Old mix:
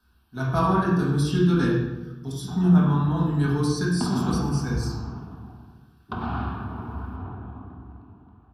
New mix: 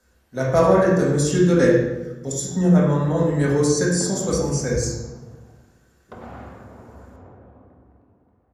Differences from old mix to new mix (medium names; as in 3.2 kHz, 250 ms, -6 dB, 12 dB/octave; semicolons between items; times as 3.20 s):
background -12.0 dB; master: remove static phaser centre 2 kHz, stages 6